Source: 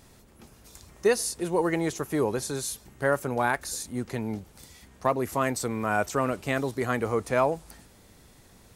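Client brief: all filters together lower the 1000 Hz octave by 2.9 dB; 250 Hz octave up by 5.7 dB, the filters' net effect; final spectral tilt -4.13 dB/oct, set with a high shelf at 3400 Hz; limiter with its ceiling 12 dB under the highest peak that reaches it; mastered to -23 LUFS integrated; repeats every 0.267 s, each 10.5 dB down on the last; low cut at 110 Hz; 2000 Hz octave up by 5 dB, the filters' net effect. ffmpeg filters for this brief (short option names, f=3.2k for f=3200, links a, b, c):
-af "highpass=110,equalizer=f=250:t=o:g=7.5,equalizer=f=1k:t=o:g=-7.5,equalizer=f=2k:t=o:g=7,highshelf=f=3.4k:g=8.5,alimiter=limit=-19dB:level=0:latency=1,aecho=1:1:267|534|801:0.299|0.0896|0.0269,volume=6dB"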